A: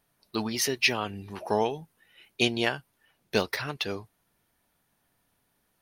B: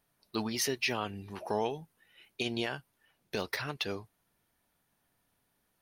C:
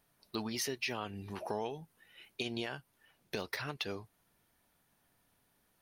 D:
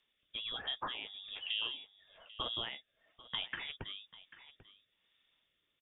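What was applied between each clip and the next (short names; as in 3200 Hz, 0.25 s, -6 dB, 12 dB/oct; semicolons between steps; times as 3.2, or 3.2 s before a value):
limiter -16 dBFS, peak gain reduction 10 dB; gain -3.5 dB
compressor 2:1, threshold -42 dBFS, peak gain reduction 9 dB; gain +2.5 dB
inverted band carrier 3600 Hz; echo 0.792 s -17 dB; rotary speaker horn 1.1 Hz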